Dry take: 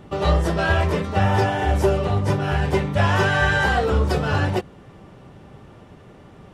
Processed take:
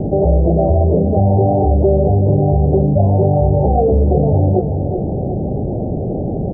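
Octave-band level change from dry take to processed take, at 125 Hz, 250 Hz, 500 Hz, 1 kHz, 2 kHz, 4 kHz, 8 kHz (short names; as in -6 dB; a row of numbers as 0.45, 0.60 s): +8.5 dB, +9.5 dB, +8.5 dB, +2.0 dB, under -40 dB, under -40 dB, under -40 dB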